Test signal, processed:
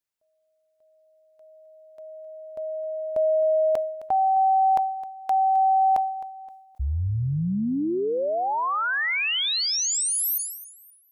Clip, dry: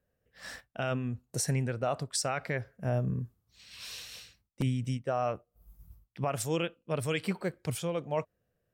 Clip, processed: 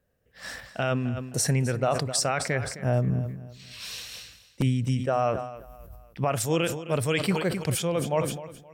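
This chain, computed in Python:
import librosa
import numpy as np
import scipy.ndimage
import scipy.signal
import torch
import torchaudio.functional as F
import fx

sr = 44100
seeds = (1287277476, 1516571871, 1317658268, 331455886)

y = fx.echo_feedback(x, sr, ms=262, feedback_pct=31, wet_db=-16.0)
y = fx.sustainer(y, sr, db_per_s=69.0)
y = y * librosa.db_to_amplitude(5.5)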